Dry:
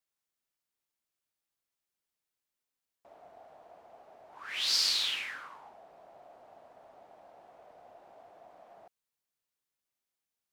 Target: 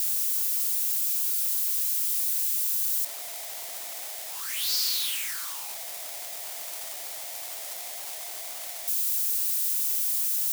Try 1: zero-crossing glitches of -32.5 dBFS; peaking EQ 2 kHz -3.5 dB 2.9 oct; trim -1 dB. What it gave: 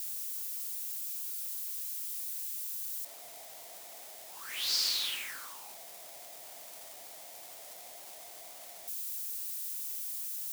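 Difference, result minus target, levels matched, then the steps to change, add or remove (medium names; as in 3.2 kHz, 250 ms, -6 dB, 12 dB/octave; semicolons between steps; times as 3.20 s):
zero-crossing glitches: distortion -11 dB
change: zero-crossing glitches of -20.5 dBFS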